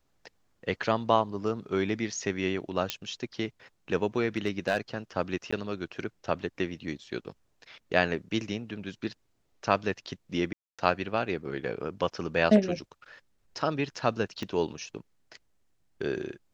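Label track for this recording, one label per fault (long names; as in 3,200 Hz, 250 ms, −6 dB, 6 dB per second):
2.900000	2.900000	click −10 dBFS
4.370000	4.780000	clipping −19 dBFS
5.510000	5.530000	drop-out 15 ms
10.530000	10.790000	drop-out 256 ms
14.430000	14.430000	click −21 dBFS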